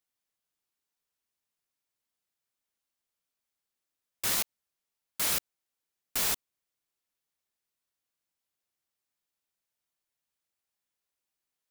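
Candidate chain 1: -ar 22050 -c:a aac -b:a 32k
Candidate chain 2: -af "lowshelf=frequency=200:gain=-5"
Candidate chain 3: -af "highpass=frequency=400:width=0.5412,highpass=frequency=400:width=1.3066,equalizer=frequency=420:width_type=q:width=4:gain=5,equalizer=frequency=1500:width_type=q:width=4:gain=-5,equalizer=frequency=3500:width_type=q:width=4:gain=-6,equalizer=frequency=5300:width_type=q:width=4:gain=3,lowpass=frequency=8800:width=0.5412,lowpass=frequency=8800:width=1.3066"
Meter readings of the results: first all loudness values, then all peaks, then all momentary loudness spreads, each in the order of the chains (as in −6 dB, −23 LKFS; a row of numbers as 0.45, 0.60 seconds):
−32.5, −29.5, −34.5 LKFS; −16.5, −14.0, −20.0 dBFS; 8, 7, 7 LU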